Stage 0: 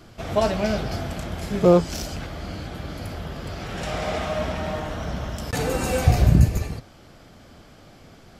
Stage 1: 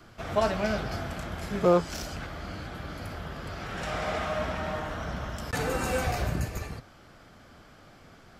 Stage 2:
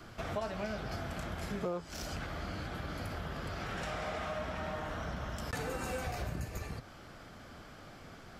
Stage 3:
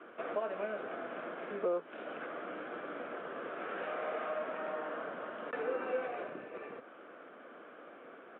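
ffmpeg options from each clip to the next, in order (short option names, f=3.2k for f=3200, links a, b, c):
-filter_complex "[0:a]equalizer=f=1.4k:w=1.1:g=6.5,acrossover=split=340|1600|3300[a][b][c][d];[a]alimiter=limit=-16.5dB:level=0:latency=1:release=406[e];[e][b][c][d]amix=inputs=4:normalize=0,volume=-6dB"
-af "acompressor=threshold=-38dB:ratio=4,volume=1.5dB"
-af "aresample=8000,acrusher=bits=6:mode=log:mix=0:aa=0.000001,aresample=44100,highpass=f=290:w=0.5412,highpass=f=290:w=1.3066,equalizer=f=490:t=q:w=4:g=5,equalizer=f=840:t=q:w=4:g=-6,equalizer=f=2k:t=q:w=4:g=-6,lowpass=f=2.4k:w=0.5412,lowpass=f=2.4k:w=1.3066,volume=2dB"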